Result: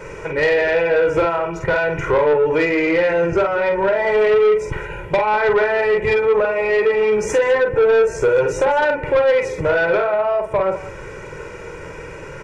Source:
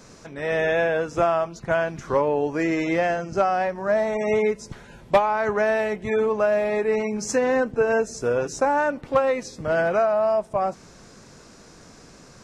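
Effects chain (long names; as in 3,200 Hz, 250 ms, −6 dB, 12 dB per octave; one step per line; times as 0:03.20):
in parallel at +0.5 dB: brickwall limiter −21 dBFS, peak gain reduction 11.5 dB
on the sum: high shelf with overshoot 3,200 Hz −10 dB, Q 3
downward compressor, threshold −20 dBFS, peak gain reduction 10.5 dB
parametric band 450 Hz +3.5 dB 0.77 octaves
comb filter 2.1 ms, depth 95%
on a send: multi-tap delay 47/199 ms −5/−17 dB
on the sum: soft clipping −13.5 dBFS, distortion −14 dB
level +3.5 dB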